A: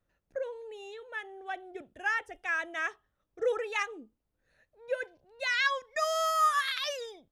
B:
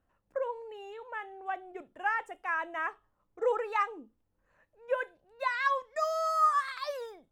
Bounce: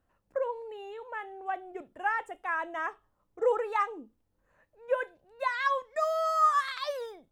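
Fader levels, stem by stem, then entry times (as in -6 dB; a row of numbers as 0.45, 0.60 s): -12.5, +1.0 dB; 0.00, 0.00 s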